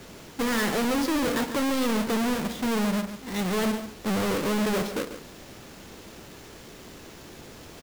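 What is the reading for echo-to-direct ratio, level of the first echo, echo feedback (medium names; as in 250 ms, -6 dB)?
-11.0 dB, -11.0 dB, no regular repeats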